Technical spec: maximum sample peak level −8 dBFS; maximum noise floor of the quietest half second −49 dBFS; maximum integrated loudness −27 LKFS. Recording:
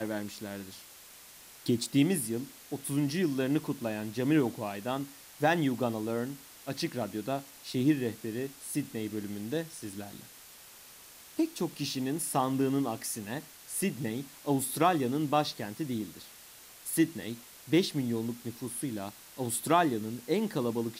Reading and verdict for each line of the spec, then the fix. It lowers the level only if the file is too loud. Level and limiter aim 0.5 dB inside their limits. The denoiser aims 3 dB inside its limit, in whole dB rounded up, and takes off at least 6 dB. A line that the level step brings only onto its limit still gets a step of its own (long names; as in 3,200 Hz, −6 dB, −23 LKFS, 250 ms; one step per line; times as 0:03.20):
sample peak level −13.5 dBFS: in spec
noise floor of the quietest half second −52 dBFS: in spec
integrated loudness −32.0 LKFS: in spec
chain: no processing needed